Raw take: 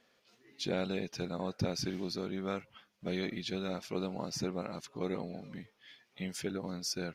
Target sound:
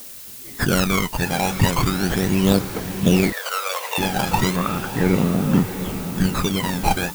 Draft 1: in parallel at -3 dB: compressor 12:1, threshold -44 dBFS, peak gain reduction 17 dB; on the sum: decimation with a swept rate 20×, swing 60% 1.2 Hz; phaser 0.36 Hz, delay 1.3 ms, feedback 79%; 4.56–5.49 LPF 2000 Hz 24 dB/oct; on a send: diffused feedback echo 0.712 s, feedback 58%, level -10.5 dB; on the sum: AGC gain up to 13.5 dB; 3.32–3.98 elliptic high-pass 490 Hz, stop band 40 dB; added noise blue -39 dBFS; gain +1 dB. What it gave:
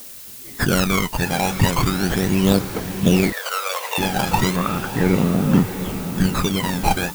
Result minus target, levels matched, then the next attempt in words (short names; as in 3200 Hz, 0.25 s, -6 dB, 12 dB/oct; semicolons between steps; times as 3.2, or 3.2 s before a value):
compressor: peak gain reduction -8.5 dB
in parallel at -3 dB: compressor 12:1, threshold -53.5 dBFS, peak gain reduction 26 dB; on the sum: decimation with a swept rate 20×, swing 60% 1.2 Hz; phaser 0.36 Hz, delay 1.3 ms, feedback 79%; 4.56–5.49 LPF 2000 Hz 24 dB/oct; on a send: diffused feedback echo 0.712 s, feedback 58%, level -10.5 dB; on the sum: AGC gain up to 13.5 dB; 3.32–3.98 elliptic high-pass 490 Hz, stop band 40 dB; added noise blue -39 dBFS; gain +1 dB